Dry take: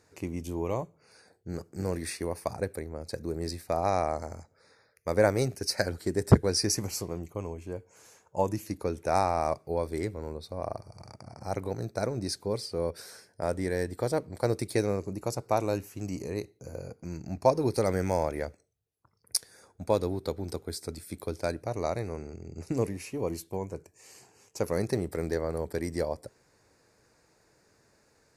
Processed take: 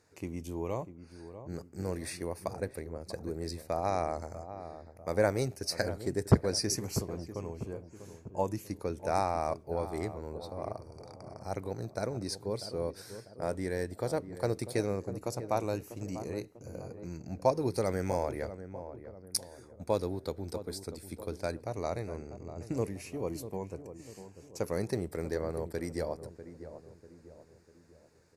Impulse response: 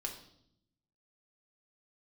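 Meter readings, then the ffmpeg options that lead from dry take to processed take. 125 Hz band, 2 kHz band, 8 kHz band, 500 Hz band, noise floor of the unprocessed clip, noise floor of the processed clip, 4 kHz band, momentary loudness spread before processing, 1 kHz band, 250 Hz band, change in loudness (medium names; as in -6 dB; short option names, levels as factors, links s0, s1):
-3.5 dB, -4.0 dB, -4.0 dB, -3.5 dB, -67 dBFS, -58 dBFS, -4.0 dB, 14 LU, -4.0 dB, -3.5 dB, -4.0 dB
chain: -filter_complex "[0:a]asplit=2[s0][s1];[s1]adelay=645,lowpass=f=1000:p=1,volume=0.282,asplit=2[s2][s3];[s3]adelay=645,lowpass=f=1000:p=1,volume=0.48,asplit=2[s4][s5];[s5]adelay=645,lowpass=f=1000:p=1,volume=0.48,asplit=2[s6][s7];[s7]adelay=645,lowpass=f=1000:p=1,volume=0.48,asplit=2[s8][s9];[s9]adelay=645,lowpass=f=1000:p=1,volume=0.48[s10];[s0][s2][s4][s6][s8][s10]amix=inputs=6:normalize=0,volume=0.631"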